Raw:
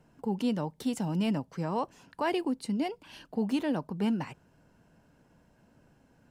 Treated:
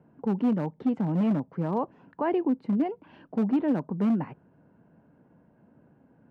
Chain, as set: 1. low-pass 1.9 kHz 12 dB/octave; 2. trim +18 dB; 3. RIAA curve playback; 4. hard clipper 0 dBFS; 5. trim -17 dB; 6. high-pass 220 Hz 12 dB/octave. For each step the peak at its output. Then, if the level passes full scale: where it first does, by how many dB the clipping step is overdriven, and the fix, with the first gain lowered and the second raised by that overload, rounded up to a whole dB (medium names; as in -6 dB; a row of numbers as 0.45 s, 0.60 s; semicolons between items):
-19.0 dBFS, -1.0 dBFS, +5.0 dBFS, 0.0 dBFS, -17.0 dBFS, -16.0 dBFS; step 3, 5.0 dB; step 2 +13 dB, step 5 -12 dB